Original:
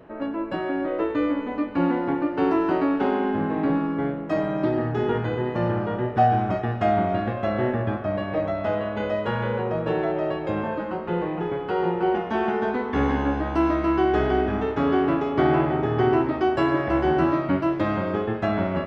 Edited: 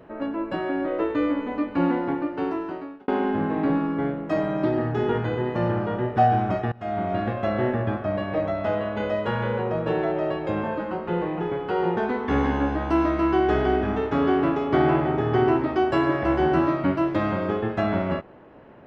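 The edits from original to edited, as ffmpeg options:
ffmpeg -i in.wav -filter_complex "[0:a]asplit=4[link_01][link_02][link_03][link_04];[link_01]atrim=end=3.08,asetpts=PTS-STARTPTS,afade=type=out:start_time=1.93:duration=1.15[link_05];[link_02]atrim=start=3.08:end=6.72,asetpts=PTS-STARTPTS,afade=type=in:duration=0.004:curve=hsin,afade=type=out:start_time=3.636:duration=0.004:curve=hsin:silence=0.0749894[link_06];[link_03]atrim=start=6.72:end=11.972,asetpts=PTS-STARTPTS,afade=type=in:duration=0.51:silence=0.0749894[link_07];[link_04]atrim=start=12.618[link_08];[link_05][link_06][link_07]concat=n=3:v=0:a=1[link_09];[link_09][link_08]acrossfade=duration=0.004:curve1=hsin:curve2=hsin" out.wav

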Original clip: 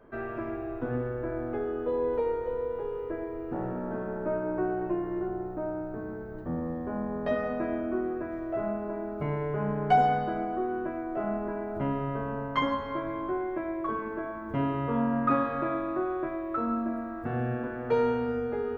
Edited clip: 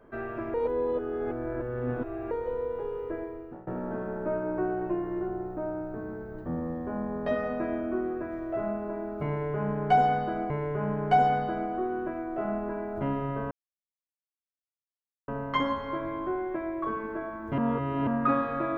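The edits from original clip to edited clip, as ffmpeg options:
ffmpeg -i in.wav -filter_complex "[0:a]asplit=8[link_01][link_02][link_03][link_04][link_05][link_06][link_07][link_08];[link_01]atrim=end=0.542[link_09];[link_02]atrim=start=0.538:end=2.312,asetpts=PTS-STARTPTS,areverse[link_10];[link_03]atrim=start=2.308:end=3.67,asetpts=PTS-STARTPTS,afade=type=out:start_time=0.872:duration=0.49:silence=0.0749894[link_11];[link_04]atrim=start=3.67:end=10.502,asetpts=PTS-STARTPTS,afade=type=in:duration=0.004:curve=hsin:silence=0.0749894[link_12];[link_05]atrim=start=9.288:end=12.3,asetpts=PTS-STARTPTS,afade=type=out:start_time=3.008:duration=0.004:curve=hsin,apad=pad_dur=1.77[link_13];[link_06]atrim=start=12.3:end=14.602,asetpts=PTS-STARTPTS,afade=type=in:duration=0.004:curve=hsin[link_14];[link_07]atrim=start=14.598:end=15.092,asetpts=PTS-STARTPTS,areverse[link_15];[link_08]atrim=start=15.088[link_16];[link_09][link_10]acrossfade=duration=0.004:curve1=hsin:curve2=hsin[link_17];[link_11][link_12]concat=n=2:v=0:a=1[link_18];[link_17][link_18]acrossfade=duration=0.004:curve1=hsin:curve2=hsin[link_19];[link_13][link_14]concat=n=2:v=0:a=1[link_20];[link_19][link_20]acrossfade=duration=0.004:curve1=hsin:curve2=hsin[link_21];[link_21][link_15]acrossfade=duration=0.004:curve1=hsin:curve2=hsin[link_22];[link_22][link_16]acrossfade=duration=0.004:curve1=hsin:curve2=hsin" out.wav

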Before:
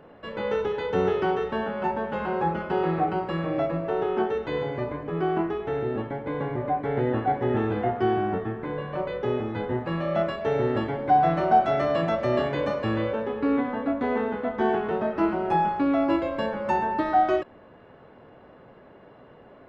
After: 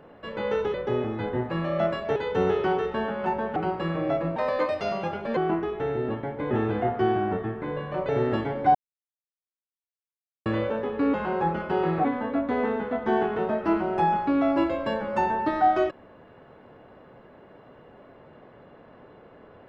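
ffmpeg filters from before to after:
ffmpeg -i in.wav -filter_complex "[0:a]asplit=12[link_01][link_02][link_03][link_04][link_05][link_06][link_07][link_08][link_09][link_10][link_11][link_12];[link_01]atrim=end=0.742[link_13];[link_02]atrim=start=9.098:end=10.522[link_14];[link_03]atrim=start=0.738:end=2.142[link_15];[link_04]atrim=start=3.048:end=3.854[link_16];[link_05]atrim=start=3.85:end=5.24,asetpts=PTS-STARTPTS,asetrate=60858,aresample=44100[link_17];[link_06]atrim=start=5.236:end=6.382[link_18];[link_07]atrim=start=7.518:end=9.102[link_19];[link_08]atrim=start=10.518:end=11.18,asetpts=PTS-STARTPTS,afade=type=out:start_time=0.658:duration=0.004:curve=hsin[link_20];[link_09]atrim=start=11.18:end=12.89,asetpts=PTS-STARTPTS,volume=0[link_21];[link_10]atrim=start=12.89:end=13.572,asetpts=PTS-STARTPTS,afade=type=in:duration=0.004:curve=hsin[link_22];[link_11]atrim=start=2.138:end=3.052[link_23];[link_12]atrim=start=13.568[link_24];[link_13][link_14]acrossfade=duration=0.004:curve1=hsin:curve2=hsin[link_25];[link_25][link_15]acrossfade=duration=0.004:curve1=hsin:curve2=hsin[link_26];[link_26][link_16]acrossfade=duration=0.004:curve1=hsin:curve2=hsin[link_27];[link_27][link_17]acrossfade=duration=0.004:curve1=hsin:curve2=hsin[link_28];[link_28][link_18]acrossfade=duration=0.004:curve1=hsin:curve2=hsin[link_29];[link_29][link_19]acrossfade=duration=0.004:curve1=hsin:curve2=hsin[link_30];[link_20][link_21][link_22]concat=n=3:v=0:a=1[link_31];[link_30][link_31]acrossfade=duration=0.004:curve1=hsin:curve2=hsin[link_32];[link_32][link_23]acrossfade=duration=0.004:curve1=hsin:curve2=hsin[link_33];[link_33][link_24]acrossfade=duration=0.004:curve1=hsin:curve2=hsin" out.wav

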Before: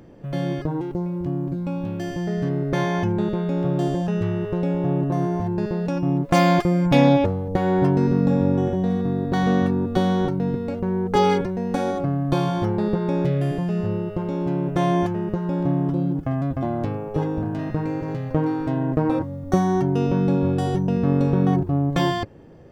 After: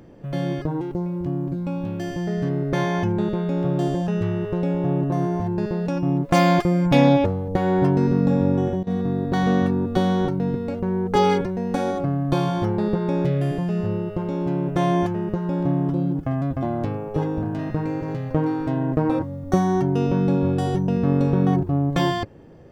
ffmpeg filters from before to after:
ffmpeg -i in.wav -filter_complex "[0:a]asplit=3[link_01][link_02][link_03];[link_01]atrim=end=8.83,asetpts=PTS-STARTPTS,afade=type=out:start_time=8.53:duration=0.3:curve=log:silence=0.105925[link_04];[link_02]atrim=start=8.83:end=8.87,asetpts=PTS-STARTPTS,volume=-19.5dB[link_05];[link_03]atrim=start=8.87,asetpts=PTS-STARTPTS,afade=type=in:duration=0.3:curve=log:silence=0.105925[link_06];[link_04][link_05][link_06]concat=n=3:v=0:a=1" out.wav

